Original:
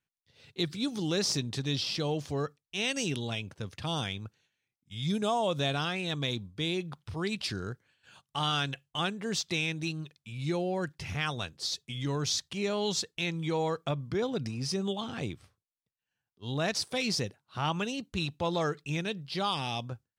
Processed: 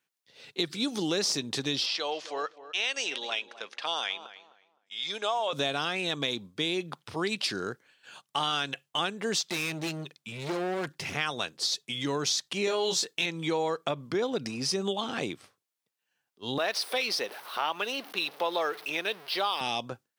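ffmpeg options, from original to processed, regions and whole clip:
ffmpeg -i in.wav -filter_complex "[0:a]asettb=1/sr,asplit=3[link_01][link_02][link_03];[link_01]atrim=end=1.864[link_04];[link_02]atrim=start=1.86:end=5.53,asetpts=PTS-STARTPTS,afade=type=in:duration=0.004:curve=qsin,afade=type=out:start_time=3.666:duration=0.004:curve=qsin,highpass=700,lowpass=5200,asplit=2[link_05][link_06];[link_06]adelay=258,lowpass=frequency=1800:poles=1,volume=-14.5dB,asplit=2[link_07][link_08];[link_08]adelay=258,lowpass=frequency=1800:poles=1,volume=0.27,asplit=2[link_09][link_10];[link_10]adelay=258,lowpass=frequency=1800:poles=1,volume=0.27[link_11];[link_05][link_07][link_09][link_11]amix=inputs=4:normalize=0,atrim=end_sample=161847[link_12];[link_03]atrim=start=5.526[link_13];[link_04][link_12]acrossfade=duration=0.004:curve1=hsin:curve2=qsin[link_14];[link_14][link_13]acrossfade=duration=0.004:curve1=qsin:curve2=hsin,asettb=1/sr,asplit=3[link_15][link_16][link_17];[link_15]atrim=end=9.504[link_18];[link_16]atrim=start=9.5:end=11.13,asetpts=PTS-STARTPTS,afade=type=in:duration=0.004:curve=qsin,afade=type=out:start_time=1.626:duration=0.004:curve=qsin,lowshelf=frequency=360:gain=4.5,volume=33.5dB,asoftclip=hard,volume=-33.5dB[link_19];[link_17]atrim=start=11.126[link_20];[link_18][link_19]acrossfade=duration=0.004:curve1=hsin:curve2=qsin[link_21];[link_21][link_20]acrossfade=duration=0.004:curve1=qsin:curve2=hsin,asettb=1/sr,asplit=3[link_22][link_23][link_24];[link_22]atrim=end=12.654[link_25];[link_23]atrim=start=12.65:end=13.26,asetpts=PTS-STARTPTS,afade=type=in:duration=0.004:curve=qsin,afade=type=out:start_time=0.606:duration=0.004:curve=qsin,highshelf=frequency=9900:gain=5,asplit=2[link_26][link_27];[link_27]adelay=22,volume=-3dB[link_28];[link_26][link_28]amix=inputs=2:normalize=0,atrim=end_sample=26901[link_29];[link_24]atrim=start=13.256[link_30];[link_25][link_29]acrossfade=duration=0.004:curve1=hsin:curve2=qsin[link_31];[link_31][link_30]acrossfade=duration=0.004:curve1=qsin:curve2=hsin,asettb=1/sr,asplit=3[link_32][link_33][link_34];[link_32]atrim=end=16.584[link_35];[link_33]atrim=start=16.58:end=19.61,asetpts=PTS-STARTPTS,afade=type=in:duration=0.004:curve=qsin,afade=type=out:start_time=3.026:duration=0.004:curve=qsin,aeval=exprs='val(0)+0.5*0.00708*sgn(val(0))':channel_layout=same,highpass=470,equalizer=frequency=7200:width_type=o:width=0.52:gain=-14.5[link_36];[link_34]atrim=start=19.606[link_37];[link_35][link_36]acrossfade=duration=0.004:curve1=hsin:curve2=qsin[link_38];[link_38][link_37]acrossfade=duration=0.004:curve1=qsin:curve2=hsin,highpass=280,acompressor=threshold=-34dB:ratio=3,volume=7.5dB" out.wav

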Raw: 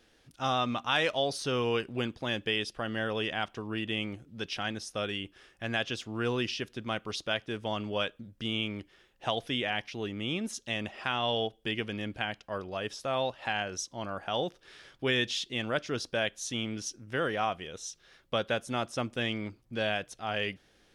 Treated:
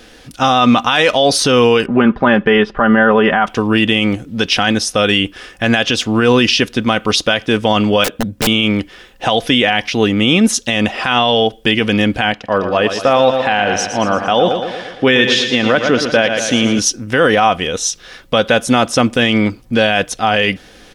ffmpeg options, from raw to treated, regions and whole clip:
ffmpeg -i in.wav -filter_complex "[0:a]asettb=1/sr,asplit=3[link_01][link_02][link_03];[link_01]atrim=end=1.864[link_04];[link_02]atrim=start=1.86:end=3.47,asetpts=PTS-STARTPTS,afade=type=in:duration=0.004:curve=qsin,afade=type=out:start_time=1.606:duration=0.004:curve=qsin,lowpass=frequency=1400:width_type=q:width=1.7,aecho=1:1:5:0.58,atrim=end_sample=71001[link_05];[link_03]atrim=start=3.466[link_06];[link_04][link_05]acrossfade=duration=0.004:curve1=hsin:curve2=qsin[link_07];[link_07][link_06]acrossfade=duration=0.004:curve1=qsin:curve2=hsin,asettb=1/sr,asplit=3[link_08][link_09][link_10];[link_08]atrim=end=8.044[link_11];[link_09]atrim=start=8.04:end=8.47,asetpts=PTS-STARTPTS,afade=type=in:duration=0.004:curve=qsin,afade=type=out:start_time=0.426:duration=0.004:curve=qsin,highpass=74,tiltshelf=frequency=680:gain=4.5,aeval=exprs='(mod(44.7*val(0)+1,2)-1)/44.7':channel_layout=same[link_12];[link_10]atrim=start=8.466[link_13];[link_11][link_12]acrossfade=duration=0.004:curve1=hsin:curve2=qsin[link_14];[link_14][link_13]acrossfade=duration=0.004:curve1=qsin:curve2=hsin,asettb=1/sr,asplit=3[link_15][link_16][link_17];[link_15]atrim=end=12.324[link_18];[link_16]atrim=start=12.32:end=16.79,asetpts=PTS-STARTPTS,afade=type=in:duration=0.004:curve=qsin,afade=type=out:start_time=4.466:duration=0.004:curve=qsin,lowpass=frequency=2600:poles=1,lowshelf=frequency=85:gain=-10.5,aecho=1:1:115|230|345|460|575|690|805:0.335|0.191|0.109|0.062|0.0354|0.0202|0.0115,atrim=end_sample=197127[link_19];[link_17]atrim=start=16.786[link_20];[link_18][link_19]acrossfade=duration=0.004:curve1=hsin:curve2=qsin[link_21];[link_21][link_20]acrossfade=duration=0.004:curve1=qsin:curve2=hsin,aecho=1:1:4:0.31,alimiter=level_in=23.5dB:limit=-1dB:release=50:level=0:latency=1,volume=-1dB" out.wav

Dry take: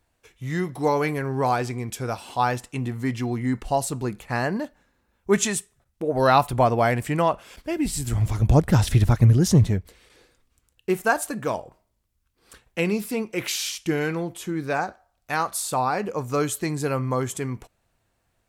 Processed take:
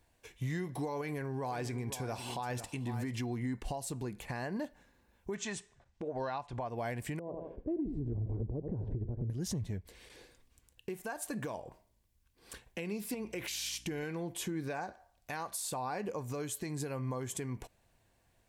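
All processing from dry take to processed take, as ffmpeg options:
ffmpeg -i in.wav -filter_complex "[0:a]asettb=1/sr,asplit=3[link_01][link_02][link_03];[link_01]atrim=end=1.014[link_04];[link_02]atrim=start=1.01:end=3.2,asetpts=PTS-STARTPTS,afade=type=in:duration=0.004:curve=qsin,afade=type=out:start_time=2.186:duration=0.004:curve=qsin,acompressor=threshold=-28dB:ratio=2:attack=3.2:release=140:knee=1:detection=peak,aecho=1:1:501:0.2,atrim=end_sample=96579[link_05];[link_03]atrim=start=3.196[link_06];[link_04][link_05]acrossfade=duration=0.004:curve1=hsin:curve2=qsin[link_07];[link_07][link_06]acrossfade=duration=0.004:curve1=qsin:curve2=hsin,asettb=1/sr,asplit=3[link_08][link_09][link_10];[link_08]atrim=end=5.354[link_11];[link_09]atrim=start=5.35:end=6.68,asetpts=PTS-STARTPTS,afade=type=in:duration=0.004:curve=qsin,afade=type=out:start_time=1.326:duration=0.004:curve=qsin,lowpass=frequency=7100:width=0.5412,lowpass=frequency=7100:width=1.3066,equalizer=frequency=1100:width=0.64:gain=5.5[link_12];[link_10]atrim=start=6.676[link_13];[link_11][link_12]acrossfade=duration=0.004:curve1=hsin:curve2=qsin[link_14];[link_14][link_13]acrossfade=duration=0.004:curve1=qsin:curve2=hsin,asettb=1/sr,asplit=3[link_15][link_16][link_17];[link_15]atrim=end=7.194[link_18];[link_16]atrim=start=7.19:end=9.3,asetpts=PTS-STARTPTS,afade=type=in:duration=0.004:curve=qsin,afade=type=out:start_time=2.106:duration=0.004:curve=qsin,lowpass=frequency=420:width_type=q:width=2.8,aecho=1:1:82|164|246:0.224|0.0649|0.0188,atrim=end_sample=93051,acompressor=threshold=-37dB:ratio=2:attack=3.2:release=140:knee=1:detection=peak[link_19];[link_17]atrim=start=9.296[link_20];[link_18][link_19]acrossfade=duration=0.004:curve1=hsin:curve2=qsin[link_21];[link_21][link_20]acrossfade=duration=0.004:curve1=qsin:curve2=hsin,asettb=1/sr,asplit=3[link_22][link_23][link_24];[link_22]atrim=end=13.144[link_25];[link_23]atrim=start=13.14:end=14.03,asetpts=PTS-STARTPTS,afade=type=in:duration=0.004:curve=qsin,afade=type=out:start_time=0.886:duration=0.004:curve=qsin,acompressor=threshold=-30dB:ratio=4:attack=3.2:release=140:knee=1:detection=peak,aeval=exprs='val(0)+0.00141*(sin(2*PI*60*n/s)+sin(2*PI*2*60*n/s)/2+sin(2*PI*3*60*n/s)/3+sin(2*PI*4*60*n/s)/4+sin(2*PI*5*60*n/s)/5)':channel_layout=same[link_26];[link_24]atrim=start=14.026[link_27];[link_25][link_26]acrossfade=duration=0.004:curve1=hsin:curve2=qsin[link_28];[link_28][link_27]acrossfade=duration=0.004:curve1=qsin:curve2=hsin,bandreject=frequency=1300:width=5.8,acompressor=threshold=-31dB:ratio=6,alimiter=level_in=4dB:limit=-24dB:level=0:latency=1:release=230,volume=-4dB" out.wav

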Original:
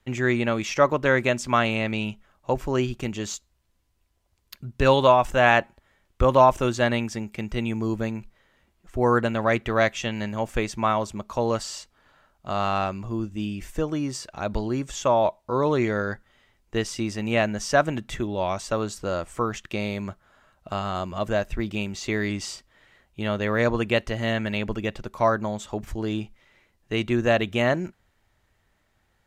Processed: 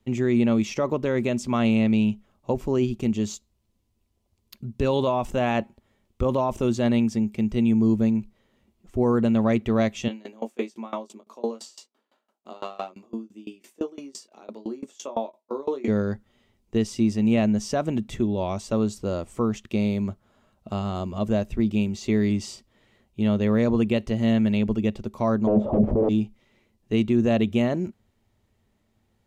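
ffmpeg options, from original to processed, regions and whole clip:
ffmpeg -i in.wav -filter_complex "[0:a]asettb=1/sr,asplit=3[link_01][link_02][link_03];[link_01]atrim=end=10.084[link_04];[link_02]atrim=start=10.08:end=15.88,asetpts=PTS-STARTPTS,afade=type=in:duration=0.004:curve=qsin,afade=type=out:start_time=5.796:duration=0.004:curve=qsin,highpass=frequency=280:width=0.5412,highpass=frequency=280:width=1.3066,asplit=2[link_05][link_06];[link_06]adelay=22,volume=-4dB[link_07];[link_05][link_07]amix=inputs=2:normalize=0,atrim=end_sample=255780,aeval=exprs='val(0)*pow(10,-25*if(lt(mod(5.9*n/s,1),2*abs(5.9)/1000),1-mod(5.9*n/s,1)/(2*abs(5.9)/1000),(mod(5.9*n/s,1)-2*abs(5.9)/1000)/(1-2*abs(5.9)/1000))/20)':channel_layout=same[link_08];[link_03]atrim=start=15.876[link_09];[link_04][link_08]acrossfade=duration=0.004:curve1=hsin:curve2=qsin[link_10];[link_10][link_09]acrossfade=duration=0.004:curve1=qsin:curve2=hsin,asettb=1/sr,asplit=3[link_11][link_12][link_13];[link_11]atrim=end=25.474[link_14];[link_12]atrim=start=25.47:end=26.09,asetpts=PTS-STARTPTS,afade=type=in:duration=0.004:curve=qsin,afade=type=out:start_time=0.616:duration=0.004:curve=qsin,lowshelf=frequency=76:gain=-11.5,aeval=exprs='0.141*sin(PI/2*6.31*val(0)/0.141)':channel_layout=same,lowpass=frequency=580:width_type=q:width=4.3[link_15];[link_13]atrim=start=26.086[link_16];[link_14][link_15]acrossfade=duration=0.004:curve1=hsin:curve2=qsin[link_17];[link_17][link_16]acrossfade=duration=0.004:curve1=qsin:curve2=hsin,equalizer=frequency=100:width_type=o:width=0.67:gain=7,equalizer=frequency=400:width_type=o:width=0.67:gain=6,equalizer=frequency=1600:width_type=o:width=0.67:gain=-8,alimiter=limit=-12dB:level=0:latency=1:release=32,equalizer=frequency=220:width=3.4:gain=12.5,volume=-3.5dB" out.wav

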